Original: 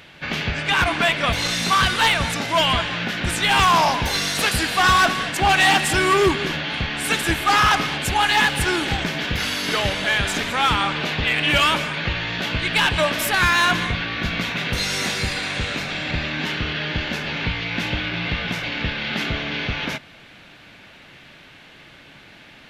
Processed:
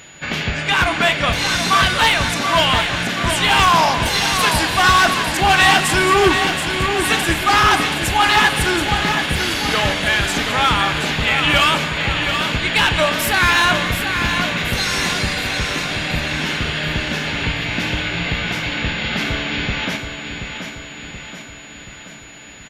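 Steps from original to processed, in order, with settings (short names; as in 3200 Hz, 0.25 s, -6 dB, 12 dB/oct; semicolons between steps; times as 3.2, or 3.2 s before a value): doubler 38 ms -14 dB; feedback echo 0.728 s, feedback 55%, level -7.5 dB; whine 6900 Hz -46 dBFS; gain +2.5 dB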